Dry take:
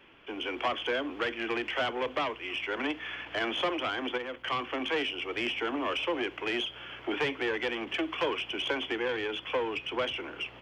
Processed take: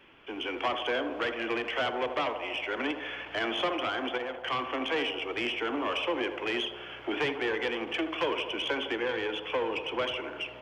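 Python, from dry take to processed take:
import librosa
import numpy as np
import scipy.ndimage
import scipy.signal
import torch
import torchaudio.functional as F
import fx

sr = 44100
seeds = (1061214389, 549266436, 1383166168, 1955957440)

y = fx.echo_banded(x, sr, ms=79, feedback_pct=81, hz=670.0, wet_db=-7.5)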